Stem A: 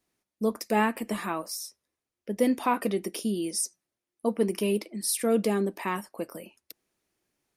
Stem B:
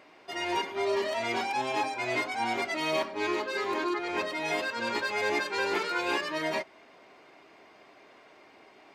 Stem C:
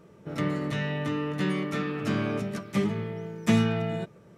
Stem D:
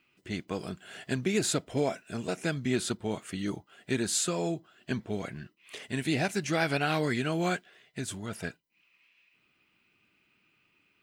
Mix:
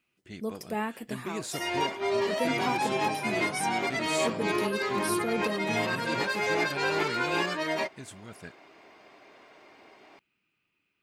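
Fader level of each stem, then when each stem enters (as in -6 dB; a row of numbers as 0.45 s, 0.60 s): -7.5 dB, +1.0 dB, -13.5 dB, -8.5 dB; 0.00 s, 1.25 s, 2.20 s, 0.00 s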